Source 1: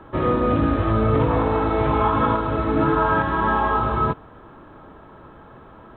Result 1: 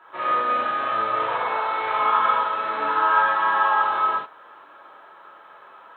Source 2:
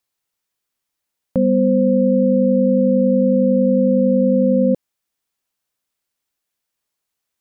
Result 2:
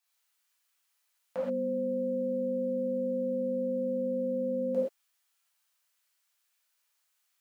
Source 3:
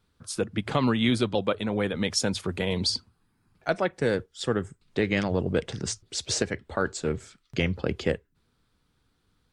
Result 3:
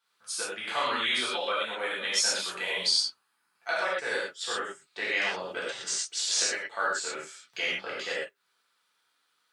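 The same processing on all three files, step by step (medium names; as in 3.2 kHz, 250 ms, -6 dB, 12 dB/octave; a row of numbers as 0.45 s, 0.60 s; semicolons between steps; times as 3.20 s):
high-pass 950 Hz 12 dB/octave; gated-style reverb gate 150 ms flat, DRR -8 dB; trim -4.5 dB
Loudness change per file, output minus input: -1.0 LU, -16.0 LU, -1.0 LU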